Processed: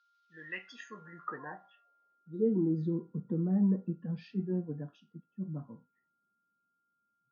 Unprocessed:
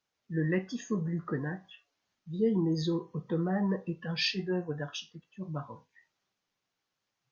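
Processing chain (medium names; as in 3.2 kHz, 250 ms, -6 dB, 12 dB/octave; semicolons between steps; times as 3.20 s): whistle 1.4 kHz -59 dBFS; band-pass sweep 4 kHz -> 220 Hz, 0.23–2.79 s; trim +4.5 dB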